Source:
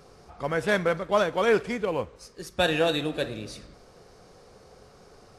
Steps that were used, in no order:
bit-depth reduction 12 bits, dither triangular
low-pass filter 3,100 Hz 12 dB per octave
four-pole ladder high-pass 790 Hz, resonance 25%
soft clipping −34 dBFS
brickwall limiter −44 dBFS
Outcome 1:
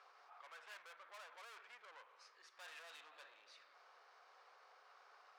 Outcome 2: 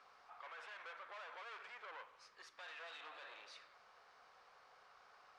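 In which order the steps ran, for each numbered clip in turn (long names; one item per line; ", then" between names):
bit-depth reduction, then low-pass filter, then soft clipping, then brickwall limiter, then four-pole ladder high-pass
soft clipping, then four-pole ladder high-pass, then bit-depth reduction, then low-pass filter, then brickwall limiter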